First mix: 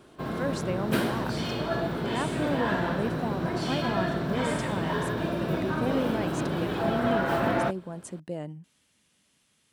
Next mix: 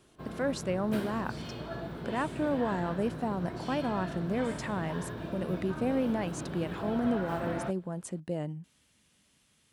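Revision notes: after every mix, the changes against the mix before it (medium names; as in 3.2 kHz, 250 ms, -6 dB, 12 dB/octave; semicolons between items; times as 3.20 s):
background -11.0 dB; master: add bass shelf 95 Hz +9 dB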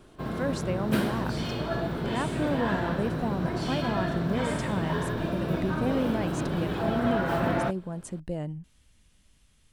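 speech: remove high-pass 150 Hz 12 dB/octave; background +9.0 dB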